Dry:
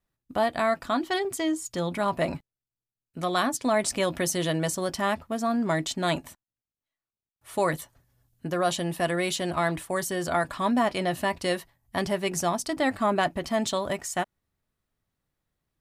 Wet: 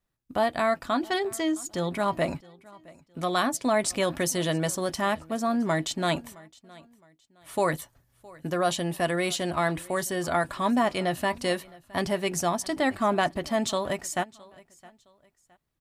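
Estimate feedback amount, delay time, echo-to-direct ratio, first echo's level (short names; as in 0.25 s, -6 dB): 32%, 0.665 s, -22.5 dB, -23.0 dB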